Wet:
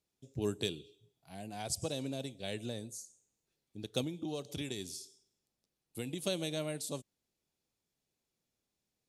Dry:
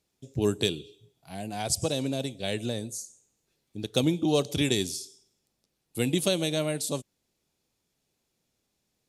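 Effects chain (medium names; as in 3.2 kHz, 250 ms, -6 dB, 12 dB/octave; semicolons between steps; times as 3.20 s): 4.01–6.26 s: compression 5:1, threshold -27 dBFS, peak gain reduction 7.5 dB; trim -9 dB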